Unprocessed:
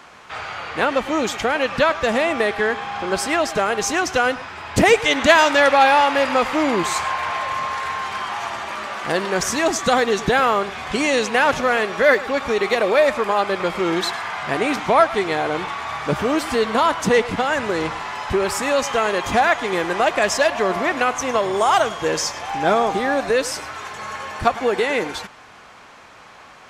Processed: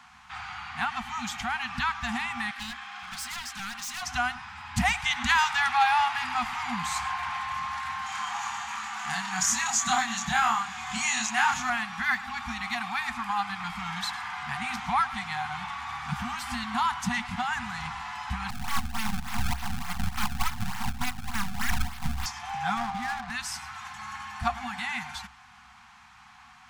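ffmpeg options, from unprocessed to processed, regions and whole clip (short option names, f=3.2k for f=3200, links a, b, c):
-filter_complex "[0:a]asettb=1/sr,asplit=3[a][b][c];[a]atrim=end=2.514[d];[b]atrim=start=2.51:end=4.03,asetpts=PTS-STARTPTS,afade=t=in:d=0.004:c=qsin,afade=t=out:st=1.516:d=0.004:c=qsin,highpass=390,equalizer=f=850:w=3:g=-12,aeval=exprs='0.0794*(abs(mod(val(0)/0.0794+3,4)-2)-1)':c=same[e];[c]atrim=start=4.026[f];[d][e]acrossfade=d=0.004:c1=hsin:c2=qsin[g];[g][f]acrossfade=d=0.004:c1=qsin:c2=hsin,asettb=1/sr,asplit=3[h][i][j];[h]atrim=end=8.064[k];[i]atrim=start=8.06:end=11.7,asetpts=PTS-STARTPTS,afade=t=in:d=0.004:c=qsin,afade=t=out:st=3.636:d=0.004:c=qsin,highpass=f=230:p=1,equalizer=f=6.9k:t=o:w=0.26:g=12,asplit=2[l][m];[m]adelay=27,volume=-2dB[n];[l][n]amix=inputs=2:normalize=0,atrim=end_sample=160524[o];[j]atrim=start=11.696[p];[k][o]acrossfade=d=0.004:c1=hsin:c2=qsin[q];[q][p]acrossfade=d=0.004:c1=qsin:c2=hsin,asettb=1/sr,asplit=3[r][s][t];[r]atrim=end=18.504[u];[s]atrim=start=18.5:end=22.26,asetpts=PTS-STARTPTS,afade=t=in:d=0.004:c=qsin,afade=t=out:st=3.756:d=0.004:c=qsin,aphaser=in_gain=1:out_gain=1:delay=3.6:decay=0.34:speed=1.7:type=sinusoidal,acrusher=samples=26:mix=1:aa=0.000001:lfo=1:lforange=41.6:lforate=3.4,aeval=exprs='abs(val(0))':c=same[v];[t]atrim=start=22.256[w];[u][v]acrossfade=d=0.004:c1=hsin:c2=qsin[x];[x][w]acrossfade=d=0.004:c1=qsin:c2=hsin,asettb=1/sr,asplit=3[y][z][aa];[y]atrim=end=22.774[ab];[z]atrim=start=22.77:end=23.31,asetpts=PTS-STARTPTS,afade=t=in:d=0.004:c=qsin,afade=t=out:st=0.536:d=0.004:c=qsin,adynamicsmooth=sensitivity=3:basefreq=520,aeval=exprs='clip(val(0),-1,0.133)':c=same[ac];[aa]atrim=start=23.306[ad];[ab][ac]acrossfade=d=0.004:c1=hsin:c2=qsin[ae];[ae][ad]acrossfade=d=0.004:c1=qsin:c2=hsin,afftfilt=real='re*(1-between(b*sr/4096,250,700))':imag='im*(1-between(b*sr/4096,250,700))':win_size=4096:overlap=0.75,equalizer=f=66:t=o:w=0.22:g=14,volume=-8dB"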